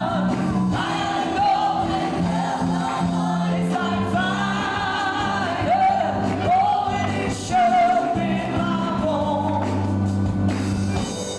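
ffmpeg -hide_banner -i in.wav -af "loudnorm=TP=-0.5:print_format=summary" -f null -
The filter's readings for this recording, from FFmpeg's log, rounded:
Input Integrated:    -21.8 LUFS
Input True Peak:     -13.1 dBTP
Input LRA:             2.2 LU
Input Threshold:     -31.8 LUFS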